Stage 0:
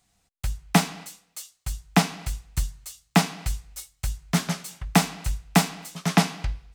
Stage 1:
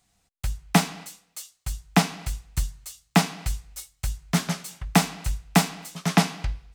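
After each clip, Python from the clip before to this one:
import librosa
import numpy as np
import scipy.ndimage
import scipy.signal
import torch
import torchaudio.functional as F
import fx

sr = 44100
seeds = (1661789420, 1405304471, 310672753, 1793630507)

y = x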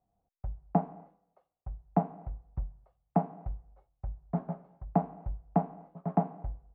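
y = fx.ladder_lowpass(x, sr, hz=850.0, resonance_pct=45)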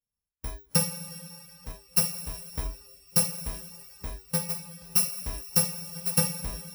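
y = fx.bit_reversed(x, sr, seeds[0], block=128)
y = fx.rev_double_slope(y, sr, seeds[1], early_s=0.32, late_s=4.0, knee_db=-18, drr_db=-2.0)
y = fx.noise_reduce_blind(y, sr, reduce_db=17)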